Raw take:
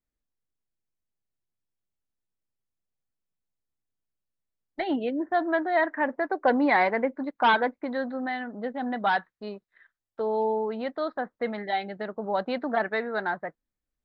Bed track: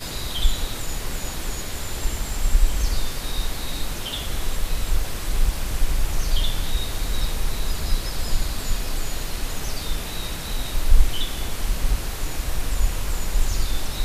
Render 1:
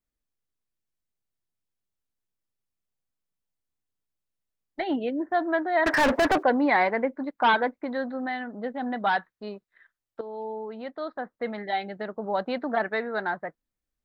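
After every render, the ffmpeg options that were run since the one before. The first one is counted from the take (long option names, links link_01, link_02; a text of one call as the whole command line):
ffmpeg -i in.wav -filter_complex "[0:a]asettb=1/sr,asplit=3[link_01][link_02][link_03];[link_01]atrim=end=5.864[link_04];[link_02]atrim=start=5.86:end=6.43,asetpts=PTS-STARTPTS,afade=type=in:duration=0.004:curve=qsin,afade=type=out:start_time=0.566:duration=0.004:curve=qsin,asplit=2[link_05][link_06];[link_06]highpass=frequency=720:poles=1,volume=36dB,asoftclip=type=tanh:threshold=-14dB[link_07];[link_05][link_07]amix=inputs=2:normalize=0,lowpass=frequency=2800:poles=1,volume=-6dB[link_08];[link_03]atrim=start=6.426[link_09];[link_04][link_08]acrossfade=duration=0.004:curve1=hsin:curve2=qsin[link_10];[link_10][link_09]acrossfade=duration=0.004:curve1=qsin:curve2=hsin,asplit=2[link_11][link_12];[link_11]atrim=end=10.21,asetpts=PTS-STARTPTS,afade=type=out:start_time=10.206:duration=0.004:curve=hsin:silence=0.251189[link_13];[link_12]atrim=start=10.21,asetpts=PTS-STARTPTS,afade=type=in:duration=1.57:silence=0.251189[link_14];[link_13][link_14]concat=n=2:v=0:a=1" out.wav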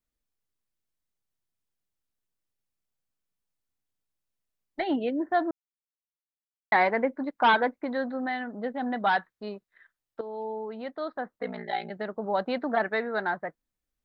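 ffmpeg -i in.wav -filter_complex "[0:a]asettb=1/sr,asplit=3[link_01][link_02][link_03];[link_01]atrim=end=11.384[link_04];[link_02]atrim=start=11.38:end=11.91,asetpts=PTS-STARTPTS,afade=type=in:duration=0.004:curve=qsin,afade=type=out:start_time=0.526:duration=0.004:curve=qsin,aeval=exprs='val(0)*sin(2*PI*29*n/s)':channel_layout=same[link_05];[link_03]atrim=start=11.906[link_06];[link_04][link_05]acrossfade=duration=0.004:curve1=hsin:curve2=qsin[link_07];[link_07][link_06]acrossfade=duration=0.004:curve1=qsin:curve2=hsin,asplit=3[link_08][link_09][link_10];[link_08]atrim=end=5.51,asetpts=PTS-STARTPTS,afade=type=out:start_time=5.506:duration=0.004:curve=hsin[link_11];[link_09]atrim=start=5.51:end=6.72,asetpts=PTS-STARTPTS,volume=0[link_12];[link_10]atrim=start=6.72,asetpts=PTS-STARTPTS,afade=type=in:duration=0.004:curve=hsin[link_13];[link_11][link_12][link_13]concat=n=3:v=0:a=1" out.wav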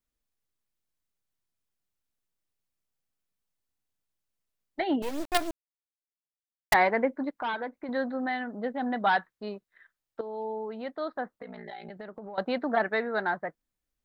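ffmpeg -i in.wav -filter_complex "[0:a]asettb=1/sr,asplit=3[link_01][link_02][link_03];[link_01]atrim=end=5.024[link_04];[link_02]atrim=start=5.02:end=6.74,asetpts=PTS-STARTPTS,afade=type=in:duration=0.004:curve=qsin,afade=type=out:start_time=1.716:duration=0.004:curve=qsin,acrusher=bits=4:dc=4:mix=0:aa=0.000001[link_05];[link_03]atrim=start=6.736[link_06];[link_04][link_05]acrossfade=duration=0.004:curve1=hsin:curve2=qsin[link_07];[link_07][link_06]acrossfade=duration=0.004:curve1=qsin:curve2=hsin,asettb=1/sr,asplit=3[link_08][link_09][link_10];[link_08]atrim=end=7.394[link_11];[link_09]atrim=start=7.39:end=7.89,asetpts=PTS-STARTPTS,afade=type=in:duration=0.004:curve=qsin,afade=type=out:start_time=0.496:duration=0.004:curve=qsin,acompressor=threshold=-38dB:ratio=2:attack=3.2:release=140:knee=1:detection=peak[link_12];[link_10]atrim=start=7.886[link_13];[link_11][link_12]acrossfade=duration=0.004:curve1=hsin:curve2=qsin[link_14];[link_14][link_13]acrossfade=duration=0.004:curve1=qsin:curve2=hsin,asettb=1/sr,asplit=3[link_15][link_16][link_17];[link_15]atrim=end=11.354[link_18];[link_16]atrim=start=11.35:end=12.38,asetpts=PTS-STARTPTS,afade=type=in:duration=0.004:curve=qsin,afade=type=out:start_time=1.026:duration=0.004:curve=qsin,acompressor=threshold=-38dB:ratio=8:attack=3.2:release=140:knee=1:detection=peak[link_19];[link_17]atrim=start=12.376[link_20];[link_18][link_19]acrossfade=duration=0.004:curve1=hsin:curve2=qsin[link_21];[link_21][link_20]acrossfade=duration=0.004:curve1=qsin:curve2=hsin" out.wav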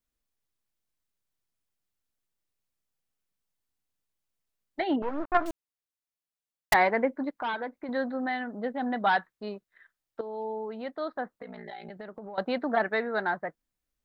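ffmpeg -i in.wav -filter_complex "[0:a]asettb=1/sr,asplit=3[link_01][link_02][link_03];[link_01]atrim=end=4.964[link_04];[link_02]atrim=start=4.96:end=5.46,asetpts=PTS-STARTPTS,afade=type=in:duration=0.004:curve=qsin,afade=type=out:start_time=0.496:duration=0.004:curve=qsin,lowpass=frequency=1300:width_type=q:width=2.7[link_05];[link_03]atrim=start=5.456[link_06];[link_04][link_05]acrossfade=duration=0.004:curve1=hsin:curve2=qsin[link_07];[link_07][link_06]acrossfade=duration=0.004:curve1=qsin:curve2=hsin" out.wav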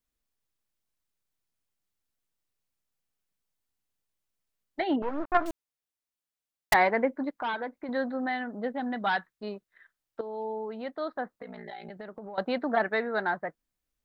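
ffmpeg -i in.wav -filter_complex "[0:a]asettb=1/sr,asplit=3[link_01][link_02][link_03];[link_01]atrim=end=8.804[link_04];[link_02]atrim=start=8.8:end=9.43,asetpts=PTS-STARTPTS,afade=type=in:duration=0.004:curve=qsin,afade=type=out:start_time=0.626:duration=0.004:curve=qsin,equalizer=frequency=670:width=0.6:gain=-4.5[link_05];[link_03]atrim=start=9.426[link_06];[link_04][link_05]acrossfade=duration=0.004:curve1=hsin:curve2=qsin[link_07];[link_07][link_06]acrossfade=duration=0.004:curve1=qsin:curve2=hsin" out.wav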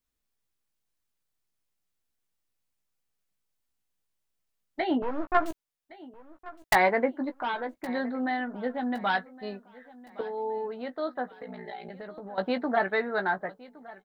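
ffmpeg -i in.wav -filter_complex "[0:a]asplit=2[link_01][link_02];[link_02]adelay=16,volume=-8dB[link_03];[link_01][link_03]amix=inputs=2:normalize=0,aecho=1:1:1115|2230|3345:0.1|0.04|0.016" out.wav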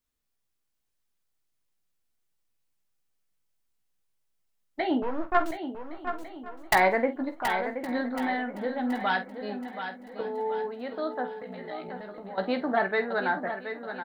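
ffmpeg -i in.wav -filter_complex "[0:a]asplit=2[link_01][link_02];[link_02]adelay=48,volume=-12dB[link_03];[link_01][link_03]amix=inputs=2:normalize=0,aecho=1:1:726|1452|2178|2904|3630:0.355|0.145|0.0596|0.0245|0.01" out.wav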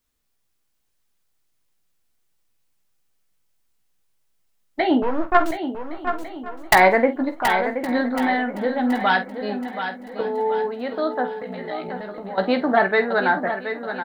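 ffmpeg -i in.wav -af "volume=8dB,alimiter=limit=-3dB:level=0:latency=1" out.wav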